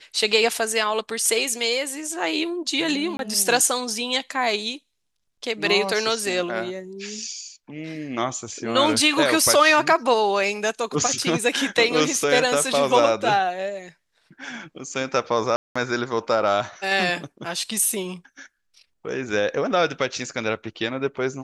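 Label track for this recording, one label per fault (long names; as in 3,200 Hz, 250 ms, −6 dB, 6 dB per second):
3.170000	3.190000	drop-out 22 ms
15.560000	15.760000	drop-out 195 ms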